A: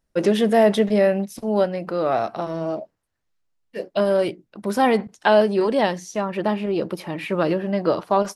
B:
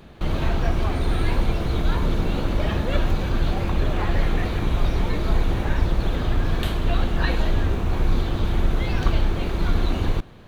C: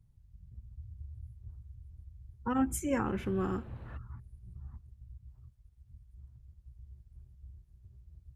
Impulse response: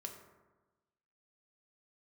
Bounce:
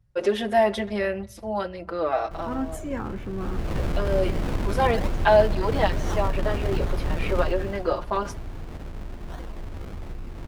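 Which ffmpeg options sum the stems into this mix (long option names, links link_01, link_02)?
-filter_complex "[0:a]equalizer=frequency=180:width=0.82:gain=-12.5,asplit=2[link_01][link_02];[link_02]adelay=5,afreqshift=-0.28[link_03];[link_01][link_03]amix=inputs=2:normalize=1,volume=1.5dB,asplit=2[link_04][link_05];[link_05]volume=-17dB[link_06];[1:a]acompressor=threshold=-20dB:ratio=6,acrusher=samples=34:mix=1:aa=0.000001:lfo=1:lforange=34:lforate=1.2,adelay=2100,volume=-0.5dB,afade=type=in:start_time=3.33:duration=0.4:silence=0.237137,afade=type=out:start_time=7.41:duration=0.4:silence=0.316228[link_07];[2:a]volume=0dB,asplit=2[link_08][link_09];[link_09]apad=whole_len=368812[link_10];[link_04][link_10]sidechaincompress=threshold=-35dB:ratio=8:attack=16:release=1390[link_11];[3:a]atrim=start_sample=2205[link_12];[link_06][link_12]afir=irnorm=-1:irlink=0[link_13];[link_11][link_07][link_08][link_13]amix=inputs=4:normalize=0,highshelf=frequency=4800:gain=-8.5"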